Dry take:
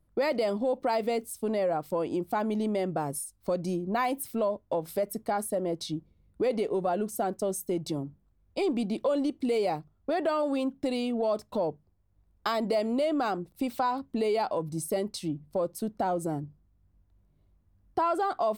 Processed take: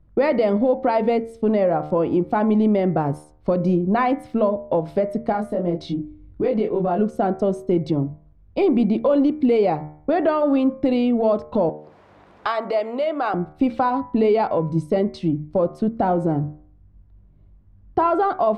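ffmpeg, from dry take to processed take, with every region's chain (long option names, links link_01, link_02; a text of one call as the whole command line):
ffmpeg -i in.wav -filter_complex "[0:a]asettb=1/sr,asplit=3[link_01][link_02][link_03];[link_01]atrim=end=5.324[link_04];[link_02]atrim=start=5.32:end=6.99,asetpts=PTS-STARTPTS,afade=type=in:duration=0.004:curve=qsin,afade=type=out:start_time=1.666:duration=0.004:curve=qsin,acompressor=threshold=-38dB:ratio=1.5:attack=3.2:release=140:knee=1:detection=peak,asplit=2[link_05][link_06];[link_06]adelay=23,volume=-2.5dB[link_07];[link_05][link_07]amix=inputs=2:normalize=0,atrim=end_sample=73647[link_08];[link_03]atrim=start=6.986[link_09];[link_04][link_08]acrossfade=duration=0.004:curve1=hsin:curve2=qsin[link_10];[link_10][link_09]acrossfade=duration=0.004:curve1=qsin:curve2=hsin,asettb=1/sr,asplit=3[link_11][link_12][link_13];[link_11]atrim=end=11.694[link_14];[link_12]atrim=start=11.69:end=13.34,asetpts=PTS-STARTPTS,afade=type=in:duration=0.004:curve=qsin,afade=type=out:start_time=1.646:duration=0.004:curve=qsin,highpass=600,acompressor=mode=upward:threshold=-33dB:ratio=2.5:attack=3.2:release=140:knee=2.83:detection=peak[link_15];[link_13]atrim=start=13.336[link_16];[link_14][link_15]acrossfade=duration=0.004:curve1=hsin:curve2=qsin[link_17];[link_17][link_16]acrossfade=duration=0.004:curve1=qsin:curve2=hsin,lowpass=2600,lowshelf=frequency=280:gain=8,bandreject=frequency=75.79:width_type=h:width=4,bandreject=frequency=151.58:width_type=h:width=4,bandreject=frequency=227.37:width_type=h:width=4,bandreject=frequency=303.16:width_type=h:width=4,bandreject=frequency=378.95:width_type=h:width=4,bandreject=frequency=454.74:width_type=h:width=4,bandreject=frequency=530.53:width_type=h:width=4,bandreject=frequency=606.32:width_type=h:width=4,bandreject=frequency=682.11:width_type=h:width=4,bandreject=frequency=757.9:width_type=h:width=4,bandreject=frequency=833.69:width_type=h:width=4,bandreject=frequency=909.48:width_type=h:width=4,bandreject=frequency=985.27:width_type=h:width=4,bandreject=frequency=1061.06:width_type=h:width=4,bandreject=frequency=1136.85:width_type=h:width=4,bandreject=frequency=1212.64:width_type=h:width=4,bandreject=frequency=1288.43:width_type=h:width=4,bandreject=frequency=1364.22:width_type=h:width=4,bandreject=frequency=1440.01:width_type=h:width=4,bandreject=frequency=1515.8:width_type=h:width=4,bandreject=frequency=1591.59:width_type=h:width=4,bandreject=frequency=1667.38:width_type=h:width=4,bandreject=frequency=1743.17:width_type=h:width=4,bandreject=frequency=1818.96:width_type=h:width=4,bandreject=frequency=1894.75:width_type=h:width=4,bandreject=frequency=1970.54:width_type=h:width=4,bandreject=frequency=2046.33:width_type=h:width=4,bandreject=frequency=2122.12:width_type=h:width=4,bandreject=frequency=2197.91:width_type=h:width=4,bandreject=frequency=2273.7:width_type=h:width=4,bandreject=frequency=2349.49:width_type=h:width=4,volume=7.5dB" out.wav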